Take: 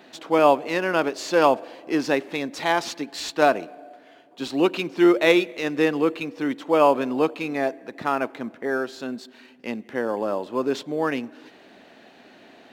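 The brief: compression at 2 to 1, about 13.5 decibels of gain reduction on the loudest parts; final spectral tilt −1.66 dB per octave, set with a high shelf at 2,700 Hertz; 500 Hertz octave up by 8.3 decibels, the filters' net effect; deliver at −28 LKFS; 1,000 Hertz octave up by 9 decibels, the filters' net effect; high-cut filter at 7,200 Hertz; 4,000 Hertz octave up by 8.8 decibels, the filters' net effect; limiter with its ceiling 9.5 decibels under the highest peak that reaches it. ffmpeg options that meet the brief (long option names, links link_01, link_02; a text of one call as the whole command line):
ffmpeg -i in.wav -af "lowpass=7200,equalizer=frequency=500:width_type=o:gain=7.5,equalizer=frequency=1000:width_type=o:gain=8,highshelf=frequency=2700:gain=4.5,equalizer=frequency=4000:width_type=o:gain=7,acompressor=threshold=-29dB:ratio=2,volume=1.5dB,alimiter=limit=-16.5dB:level=0:latency=1" out.wav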